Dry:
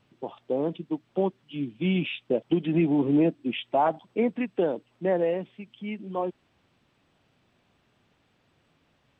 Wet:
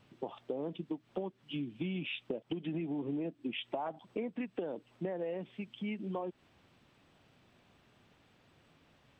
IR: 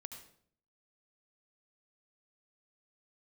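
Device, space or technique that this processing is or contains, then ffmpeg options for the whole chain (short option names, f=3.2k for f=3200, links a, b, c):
serial compression, peaks first: -af "acompressor=threshold=-31dB:ratio=6,acompressor=threshold=-39dB:ratio=2,volume=1.5dB"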